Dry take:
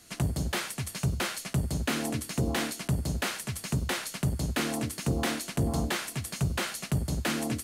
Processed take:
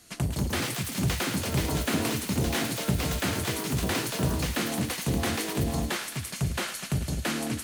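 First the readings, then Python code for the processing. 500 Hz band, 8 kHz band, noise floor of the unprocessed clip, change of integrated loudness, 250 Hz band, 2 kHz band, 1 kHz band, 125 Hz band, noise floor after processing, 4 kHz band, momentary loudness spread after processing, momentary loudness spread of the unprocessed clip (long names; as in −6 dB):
+3.0 dB, +2.5 dB, −46 dBFS, +2.0 dB, +2.5 dB, +2.0 dB, +2.5 dB, +1.0 dB, −39 dBFS, +3.0 dB, 3 LU, 3 LU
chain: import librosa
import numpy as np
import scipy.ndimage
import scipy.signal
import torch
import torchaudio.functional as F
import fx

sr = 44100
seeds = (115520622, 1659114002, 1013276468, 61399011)

y = fx.echo_pitch(x, sr, ms=248, semitones=6, count=2, db_per_echo=-3.0)
y = fx.echo_thinned(y, sr, ms=108, feedback_pct=83, hz=1000.0, wet_db=-10.0)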